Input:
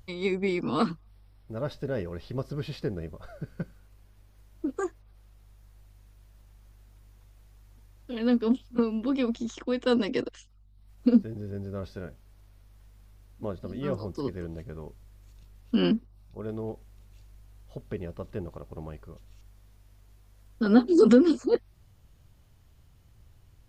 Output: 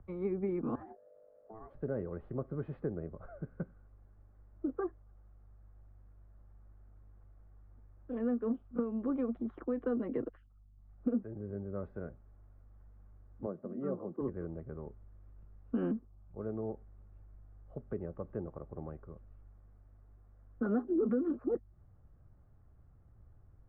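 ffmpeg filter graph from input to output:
-filter_complex "[0:a]asettb=1/sr,asplit=3[a][b][c];[a]atrim=end=0.754[d];[b]atrim=start=0.75:end=1.74,asetpts=PTS-STARTPTS,afade=t=in:d=0.004:c=qsin,afade=t=out:st=0.986:d=0.004:c=qsin,asoftclip=type=hard:threshold=-20dB,acompressor=threshold=-39dB:ratio=16:attack=3.2:release=140:knee=1:detection=peak,aeval=exprs='val(0)*sin(2*PI*550*n/s)':c=same[e];[c]atrim=start=1.736[f];[d][e]acrossfade=d=0.004:c1=hsin:c2=qsin[g];[g][f]acrossfade=d=0.004:c1=qsin:c2=hsin,asettb=1/sr,asplit=3[h][i][j];[h]atrim=end=13.464[k];[i]atrim=start=13.46:end=14.21,asetpts=PTS-STARTPTS,afade=t=in:d=0.004:c=qsin,afade=t=out:st=0.746:d=0.004:c=qsin,highpass=f=170:w=0.5412,highpass=f=170:w=1.3066,highshelf=f=2k:g=-11[l];[j]atrim=start=14.206[m];[k][l]acrossfade=d=0.004:c1=hsin:c2=qsin[n];[n][m]acrossfade=d=0.004:c1=qsin:c2=hsin,acrossover=split=150|350[o][p][q];[o]acompressor=threshold=-44dB:ratio=4[r];[p]acompressor=threshold=-33dB:ratio=4[s];[q]acompressor=threshold=-33dB:ratio=4[t];[r][s][t]amix=inputs=3:normalize=0,lowpass=f=1.4k:w=0.5412,lowpass=f=1.4k:w=1.3066,bandreject=f=960:w=8.4,volume=-3dB"

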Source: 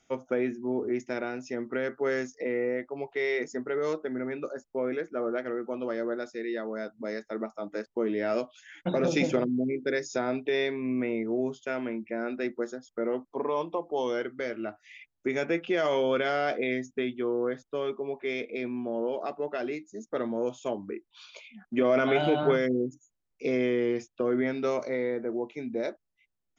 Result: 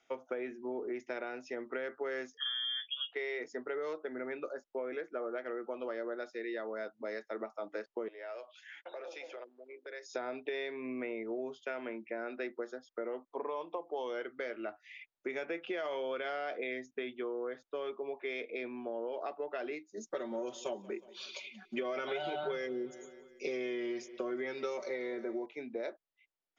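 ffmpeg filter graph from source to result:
-filter_complex "[0:a]asettb=1/sr,asplit=3[a][b][c];[a]atrim=end=2.374[d];[b]atrim=start=2.37:end=3.13,asetpts=PTS-STARTPTS,afade=t=in:d=0.004:c=qsin,afade=t=out:st=0.756:d=0.004:c=qsin,asplit=2[e][f];[f]adelay=12,volume=-4.5dB[g];[e][g]amix=inputs=2:normalize=0,atrim=end_sample=33516,lowpass=f=3.1k:t=q:w=0.5098,lowpass=f=3.1k:t=q:w=0.6013,lowpass=f=3.1k:t=q:w=0.9,lowpass=f=3.1k:t=q:w=2.563,afreqshift=-3700[h];[c]atrim=start=3.126[i];[d][h]acrossfade=d=0.004:c1=hsin:c2=qsin[j];[j][i]acrossfade=d=0.004:c1=qsin:c2=hsin,asettb=1/sr,asplit=3[k][l][m];[k]atrim=end=8.084[n];[l]atrim=start=8.08:end=10.14,asetpts=PTS-STARTPTS,afade=t=in:d=0.004:c=qsin,afade=t=out:st=2.056:d=0.004:c=qsin,acompressor=threshold=-38dB:ratio=4:attack=3.2:release=140:knee=1:detection=peak,highpass=f=440:w=0.5412,highpass=f=440:w=1.3066[o];[m]atrim=start=10.136[p];[n][o]acrossfade=d=0.004:c1=hsin:c2=qsin[q];[q][p]acrossfade=d=0.004:c1=qsin:c2=hsin,asettb=1/sr,asplit=3[r][s][t];[r]atrim=end=19.974[u];[s]atrim=start=19.97:end=25.46,asetpts=PTS-STARTPTS,afade=t=in:d=0.004:c=qsin,afade=t=out:st=5.486:d=0.004:c=qsin,bass=f=250:g=4,treble=f=4k:g=13,aecho=1:1:5.3:0.82,atrim=end_sample=242109,aecho=1:1:181|362|543|724:0.075|0.042|0.0235|0.0132,atrim=end_sample=242109[v];[t]atrim=start=25.456[w];[u][v]acrossfade=d=0.004:c1=hsin:c2=qsin[x];[x][w]acrossfade=d=0.004:c1=qsin:c2=hsin,acrossover=split=330 5300:gain=0.141 1 0.0891[y][z][aa];[y][z][aa]amix=inputs=3:normalize=0,acompressor=threshold=-33dB:ratio=6,volume=-1.5dB"

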